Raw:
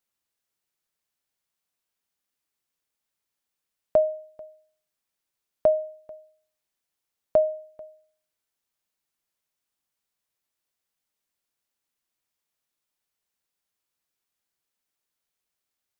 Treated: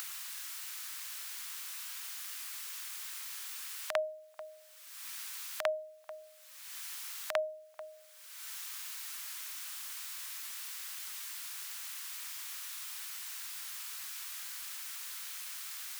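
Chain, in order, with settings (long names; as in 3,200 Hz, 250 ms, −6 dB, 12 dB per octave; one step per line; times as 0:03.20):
echo ahead of the sound 50 ms −18.5 dB
upward compression, threshold −22 dBFS
high-pass filter 1,100 Hz 24 dB per octave
level +6.5 dB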